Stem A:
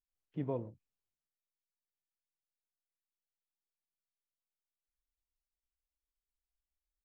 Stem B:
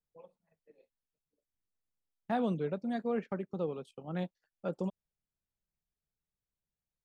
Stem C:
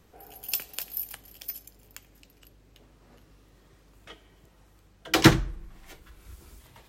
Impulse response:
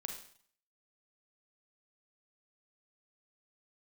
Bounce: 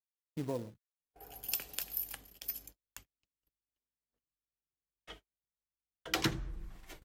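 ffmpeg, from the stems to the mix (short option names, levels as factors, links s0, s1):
-filter_complex "[0:a]acrusher=bits=4:mode=log:mix=0:aa=0.000001,volume=1[s0];[2:a]adelay=1000,volume=0.708[s1];[s0][s1]amix=inputs=2:normalize=0,agate=range=0.00562:threshold=0.00251:ratio=16:detection=peak,aphaser=in_gain=1:out_gain=1:delay=4.8:decay=0.21:speed=0.62:type=sinusoidal,acompressor=threshold=0.0316:ratio=6"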